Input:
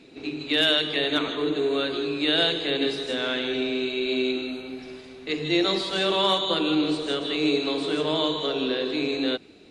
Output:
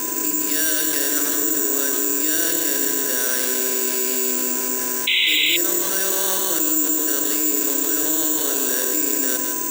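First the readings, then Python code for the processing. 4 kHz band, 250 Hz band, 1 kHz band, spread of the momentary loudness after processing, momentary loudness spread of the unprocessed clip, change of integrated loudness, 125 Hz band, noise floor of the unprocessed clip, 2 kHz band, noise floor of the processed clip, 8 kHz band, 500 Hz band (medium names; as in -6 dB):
+0.5 dB, -1.0 dB, -1.0 dB, 2 LU, 10 LU, +7.0 dB, no reading, -47 dBFS, +4.5 dB, -23 dBFS, +30.5 dB, -3.0 dB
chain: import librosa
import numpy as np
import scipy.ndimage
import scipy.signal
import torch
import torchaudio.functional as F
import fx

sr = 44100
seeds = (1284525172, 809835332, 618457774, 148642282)

y = fx.bin_compress(x, sr, power=0.6)
y = fx.graphic_eq_31(y, sr, hz=(125, 315, 1600), db=(-10, 9, 12))
y = y + 10.0 ** (-34.0 / 20.0) * np.sin(2.0 * np.pi * 1000.0 * np.arange(len(y)) / sr)
y = y + 10.0 ** (-10.5 / 20.0) * np.pad(y, (int(160 * sr / 1000.0), 0))[:len(y)]
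y = (np.kron(scipy.signal.resample_poly(y, 1, 6), np.eye(6)[0]) * 6)[:len(y)]
y = fx.spec_paint(y, sr, seeds[0], shape='noise', start_s=5.07, length_s=0.5, low_hz=2000.0, high_hz=4000.0, level_db=-1.0)
y = fx.peak_eq(y, sr, hz=510.0, db=3.5, octaves=0.5)
y = fx.env_flatten(y, sr, amount_pct=70)
y = y * librosa.db_to_amplitude(-18.0)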